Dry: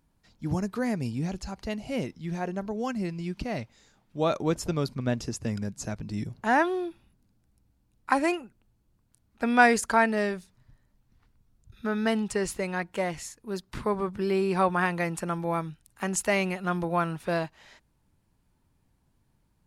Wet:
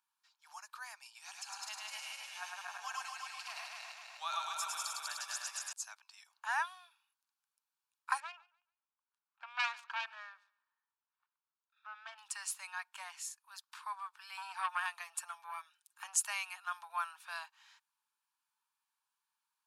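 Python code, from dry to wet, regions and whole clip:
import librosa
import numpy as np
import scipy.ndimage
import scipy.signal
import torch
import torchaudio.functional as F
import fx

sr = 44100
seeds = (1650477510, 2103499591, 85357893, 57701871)

y = fx.chain(x, sr, fx.reverse_delay_fb(ms=127, feedback_pct=72, wet_db=-1.5),
    fx.echo_single(ms=105, db=-3.0),
    fx.band_squash(depth_pct=40), at=(1.15, 5.73))
y = fx.chain(y, sr, fx.self_delay(depth_ms=0.41),
    fx.spacing_loss(db_at_10k=31),
    fx.echo_thinned(ms=143, feedback_pct=24, hz=220.0, wet_db=-22.0), at=(8.2, 12.18))
y = fx.chain(y, sr, fx.highpass(hz=47.0, slope=12),
    fx.comb(ms=5.6, depth=0.52),
    fx.transformer_sat(knee_hz=960.0), at=(14.37, 16.25))
y = scipy.signal.sosfilt(scipy.signal.butter(8, 900.0, 'highpass', fs=sr, output='sos'), y)
y = fx.notch(y, sr, hz=2000.0, q=5.6)
y = fx.dynamic_eq(y, sr, hz=9800.0, q=0.74, threshold_db=-50.0, ratio=4.0, max_db=6)
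y = F.gain(torch.from_numpy(y), -7.0).numpy()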